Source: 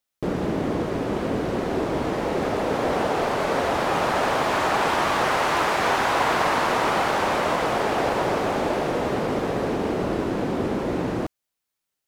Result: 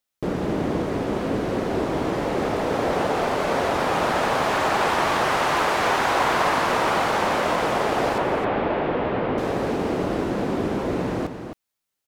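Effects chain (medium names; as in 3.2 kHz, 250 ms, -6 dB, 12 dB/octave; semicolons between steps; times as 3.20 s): 8.18–9.38 s: low-pass 3.2 kHz 24 dB/octave; delay 265 ms -8.5 dB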